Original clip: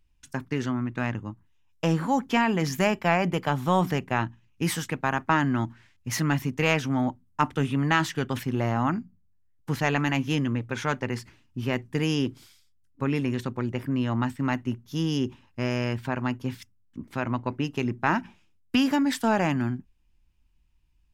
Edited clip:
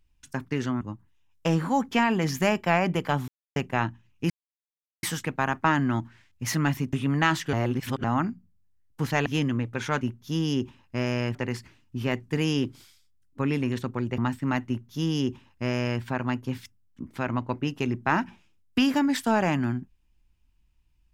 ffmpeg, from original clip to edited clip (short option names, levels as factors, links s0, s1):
-filter_complex "[0:a]asplit=12[s0][s1][s2][s3][s4][s5][s6][s7][s8][s9][s10][s11];[s0]atrim=end=0.812[s12];[s1]atrim=start=1.188:end=3.66,asetpts=PTS-STARTPTS,afade=t=out:st=2.468:d=0.004:c=hsin[s13];[s2]atrim=start=3.66:end=3.94,asetpts=PTS-STARTPTS,volume=0[s14];[s3]atrim=start=3.94:end=4.68,asetpts=PTS-STARTPTS,afade=t=in:d=0.004:c=hsin,afade=t=out:st=0.736:d=0.004:c=hsin,apad=pad_dur=0.73[s15];[s4]atrim=start=4.68:end=6.582,asetpts=PTS-STARTPTS,afade=t=in:d=0.004:c=hsin[s16];[s5]atrim=start=7.618:end=8.222[s17];[s6]atrim=start=8.218:end=8.732,asetpts=PTS-STARTPTS,areverse[s18];[s7]atrim=start=8.728:end=9.952[s19];[s8]atrim=start=10.218:end=10.972[s20];[s9]atrim=start=14.648:end=15.992[s21];[s10]atrim=start=10.968:end=13.802[s22];[s11]atrim=start=14.148[s23];[s13][s14][s15][s16]concat=n=4:v=0:a=1[s24];[s12][s24]acrossfade=d=0.004:c1=hsin:c2=hsin[s25];[s25][s17]acrossfade=d=0.004:c1=hsin:c2=hsin[s26];[s26][s18]acrossfade=d=0.004:c1=hsin:c2=hsin[s27];[s27][s19]acrossfade=d=0.004:c1=hsin:c2=hsin[s28];[s28][s20]acrossfade=d=0.004:c1=hsin:c2=hsin[s29];[s29][s21]acrossfade=d=0.004:c1=hsin:c2=hsin[s30];[s30][s22]acrossfade=d=0.004:c1=hsin:c2=hsin[s31];[s31][s23]acrossfade=d=0.004:c1=hsin:c2=hsin"